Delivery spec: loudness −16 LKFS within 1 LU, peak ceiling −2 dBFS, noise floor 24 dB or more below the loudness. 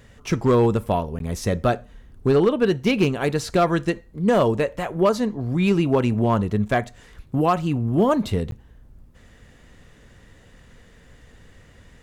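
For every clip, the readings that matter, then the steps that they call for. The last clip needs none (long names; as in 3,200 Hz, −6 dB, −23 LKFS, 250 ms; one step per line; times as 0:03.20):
share of clipped samples 0.4%; peaks flattened at −10.5 dBFS; number of dropouts 2; longest dropout 12 ms; integrated loudness −21.5 LKFS; sample peak −10.5 dBFS; target loudness −16.0 LKFS
→ clipped peaks rebuilt −10.5 dBFS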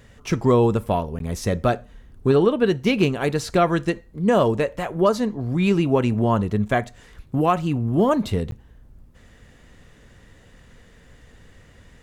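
share of clipped samples 0.0%; number of dropouts 2; longest dropout 12 ms
→ repair the gap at 0:01.19/0:08.51, 12 ms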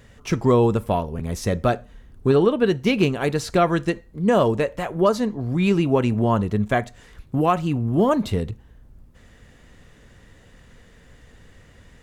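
number of dropouts 0; integrated loudness −21.5 LKFS; sample peak −5.0 dBFS; target loudness −16.0 LKFS
→ level +5.5 dB
brickwall limiter −2 dBFS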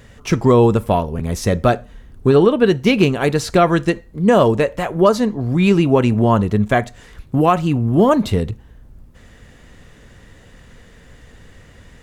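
integrated loudness −16.0 LKFS; sample peak −2.0 dBFS; background noise floor −46 dBFS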